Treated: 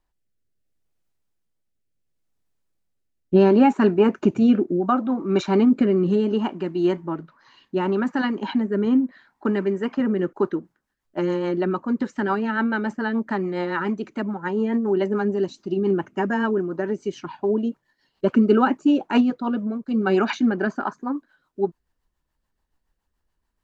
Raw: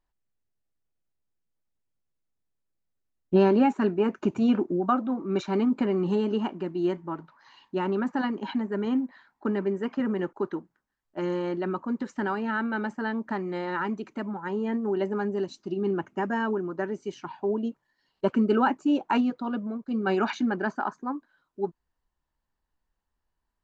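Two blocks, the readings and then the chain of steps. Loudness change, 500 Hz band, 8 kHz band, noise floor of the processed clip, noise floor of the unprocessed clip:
+5.5 dB, +5.5 dB, n/a, -76 dBFS, -82 dBFS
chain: rotary speaker horn 0.7 Hz, later 7 Hz, at 10.06; gain +7.5 dB

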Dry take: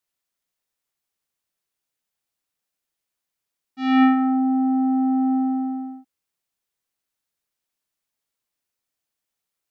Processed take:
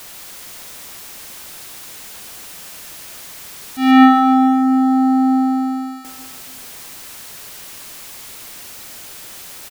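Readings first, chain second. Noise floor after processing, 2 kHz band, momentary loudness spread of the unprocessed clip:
-36 dBFS, +8.5 dB, 12 LU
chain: zero-crossing step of -38 dBFS; feedback echo 0.143 s, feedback 57%, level -7 dB; gain +8 dB

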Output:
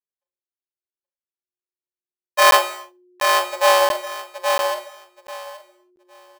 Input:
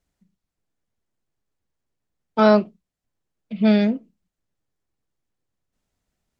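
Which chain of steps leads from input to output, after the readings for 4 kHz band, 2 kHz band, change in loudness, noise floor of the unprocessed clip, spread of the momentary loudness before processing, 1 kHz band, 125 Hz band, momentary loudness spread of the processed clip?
+14.5 dB, +11.5 dB, +1.0 dB, -84 dBFS, 19 LU, +11.0 dB, n/a, 21 LU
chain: sample sorter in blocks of 64 samples; gate -48 dBFS, range -32 dB; in parallel at -5 dB: backlash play -24 dBFS; on the sum: frequency shift +360 Hz; on a send: feedback echo 0.825 s, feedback 19%, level -5 dB; on the sum: non-linear reverb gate 0.31 s falling, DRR 11 dB; crackling interface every 0.69 s, samples 512, zero, from 0.44; gain -2 dB

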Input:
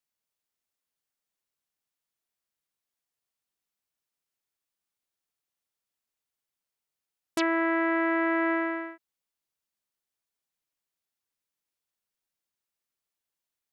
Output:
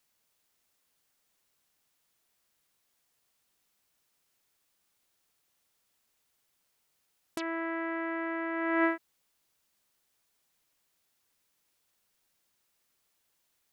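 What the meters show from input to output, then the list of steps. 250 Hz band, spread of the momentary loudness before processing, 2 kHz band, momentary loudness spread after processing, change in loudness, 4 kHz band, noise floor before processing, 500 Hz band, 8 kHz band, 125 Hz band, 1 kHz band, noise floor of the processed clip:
-5.5 dB, 11 LU, -5.0 dB, 11 LU, -5.5 dB, -8.0 dB, under -85 dBFS, -5.0 dB, -7.5 dB, n/a, -5.0 dB, -76 dBFS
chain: negative-ratio compressor -36 dBFS, ratio -1; gain +3.5 dB

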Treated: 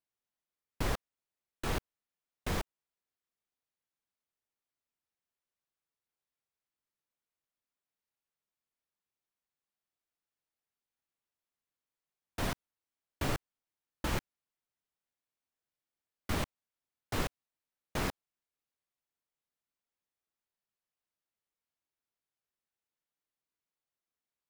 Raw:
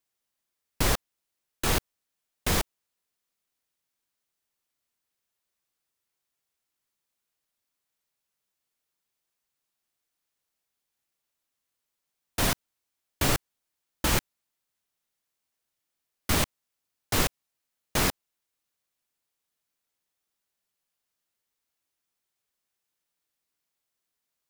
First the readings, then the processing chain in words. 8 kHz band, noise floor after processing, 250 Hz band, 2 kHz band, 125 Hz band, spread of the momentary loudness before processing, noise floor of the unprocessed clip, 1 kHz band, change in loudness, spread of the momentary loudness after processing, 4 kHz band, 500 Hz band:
-15.5 dB, under -85 dBFS, -7.0 dB, -9.0 dB, -7.0 dB, 6 LU, -84 dBFS, -7.5 dB, -10.0 dB, 6 LU, -12.0 dB, -7.0 dB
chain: high shelf 3600 Hz -10 dB; gain -7 dB

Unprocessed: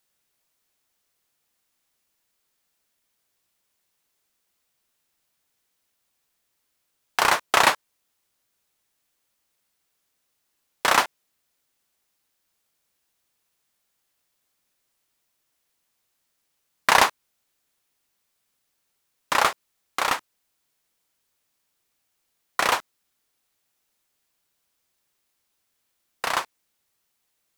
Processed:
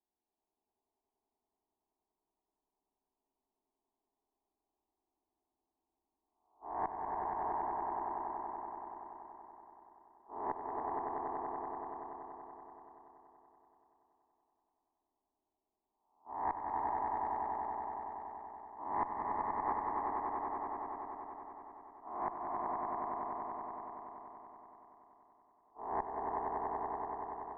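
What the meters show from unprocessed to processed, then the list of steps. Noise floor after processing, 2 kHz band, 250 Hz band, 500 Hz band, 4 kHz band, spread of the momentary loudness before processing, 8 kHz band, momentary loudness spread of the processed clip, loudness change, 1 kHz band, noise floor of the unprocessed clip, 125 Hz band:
under -85 dBFS, -26.5 dB, -4.5 dB, -8.5 dB, under -40 dB, 13 LU, under -40 dB, 16 LU, -17.0 dB, -8.0 dB, -75 dBFS, -8.5 dB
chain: spectral swells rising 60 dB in 0.90 s; gate -53 dBFS, range -20 dB; steep low-pass 1000 Hz 48 dB/oct; bell 510 Hz +5.5 dB 1.9 oct; compressor, threshold -21 dBFS, peak gain reduction 12 dB; flipped gate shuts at -31 dBFS, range -26 dB; fixed phaser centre 530 Hz, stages 6; vibrato 1.9 Hz 7.8 cents; added harmonics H 4 -16 dB, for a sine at -22 dBFS; swelling echo 95 ms, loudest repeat 5, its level -4.5 dB; gain +9 dB

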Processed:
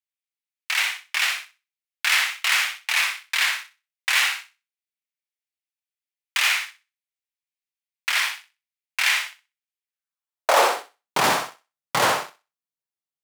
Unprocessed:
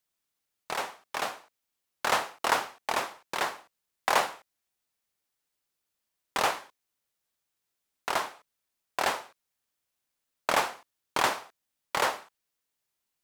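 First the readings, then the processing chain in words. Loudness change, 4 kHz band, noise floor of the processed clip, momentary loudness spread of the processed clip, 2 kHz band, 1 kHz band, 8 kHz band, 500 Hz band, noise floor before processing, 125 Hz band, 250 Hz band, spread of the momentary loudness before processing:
+8.5 dB, +12.0 dB, under -85 dBFS, 12 LU, +11.0 dB, +3.5 dB, +10.0 dB, +5.0 dB, -84 dBFS, n/a, +4.0 dB, 12 LU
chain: sample leveller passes 5; high-pass sweep 2200 Hz -> 130 Hz, 9.81–11.27; thinning echo 63 ms, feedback 21%, high-pass 350 Hz, level -5 dB; gain -5.5 dB

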